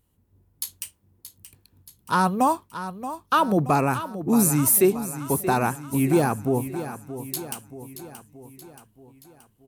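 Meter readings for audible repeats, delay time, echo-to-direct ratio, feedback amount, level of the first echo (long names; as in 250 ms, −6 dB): 5, 627 ms, −10.5 dB, 54%, −12.0 dB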